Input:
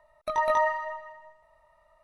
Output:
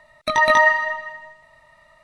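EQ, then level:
octave-band graphic EQ 125/250/2,000/4,000/8,000 Hz +11/+12/+11/+11/+10 dB
+3.5 dB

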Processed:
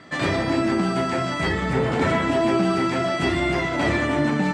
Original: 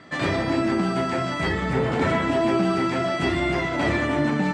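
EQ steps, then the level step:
high-shelf EQ 6,900 Hz +4.5 dB
+1.0 dB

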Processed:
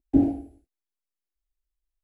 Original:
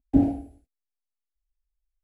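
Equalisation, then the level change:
parametric band 350 Hz +10 dB 0.42 octaves
−3.0 dB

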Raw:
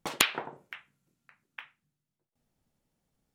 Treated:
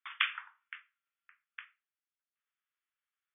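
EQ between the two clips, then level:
Butterworth high-pass 1,200 Hz 48 dB per octave
linear-phase brick-wall low-pass 3,600 Hz
high-frequency loss of the air 250 metres
0.0 dB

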